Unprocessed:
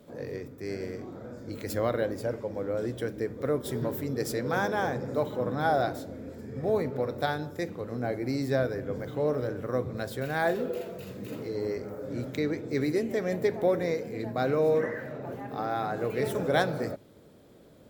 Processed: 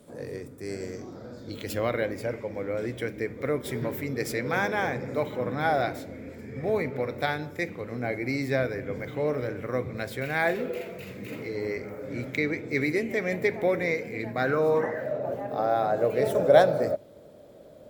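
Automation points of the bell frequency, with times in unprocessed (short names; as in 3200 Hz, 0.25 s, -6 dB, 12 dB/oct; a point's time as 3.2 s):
bell +13.5 dB 0.5 oct
0.65 s 9000 Hz
1.97 s 2200 Hz
14.32 s 2200 Hz
15.04 s 600 Hz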